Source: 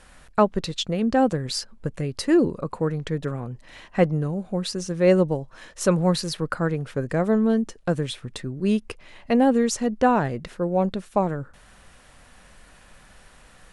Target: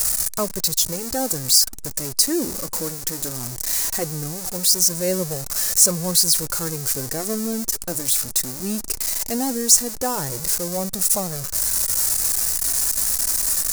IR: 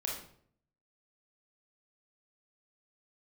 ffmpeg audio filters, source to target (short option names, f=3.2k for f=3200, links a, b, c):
-af "aeval=exprs='val(0)+0.5*0.075*sgn(val(0))':c=same,flanger=delay=1.5:depth=2.1:regen=-51:speed=0.18:shape=triangular,aexciter=amount=8.9:drive=6.8:freq=4.7k,volume=-4dB"